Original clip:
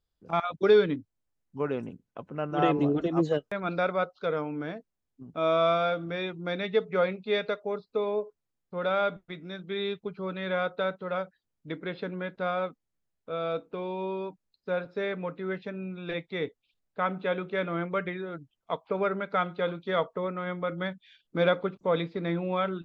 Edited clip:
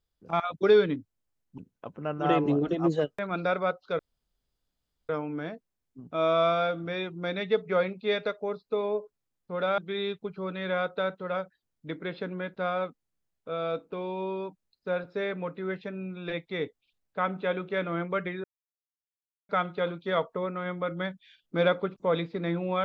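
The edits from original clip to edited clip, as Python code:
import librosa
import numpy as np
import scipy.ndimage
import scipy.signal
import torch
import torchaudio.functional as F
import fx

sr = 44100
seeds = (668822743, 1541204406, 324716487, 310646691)

y = fx.edit(x, sr, fx.cut(start_s=1.58, length_s=0.33),
    fx.insert_room_tone(at_s=4.32, length_s=1.1),
    fx.cut(start_s=9.01, length_s=0.58),
    fx.silence(start_s=18.25, length_s=1.05), tone=tone)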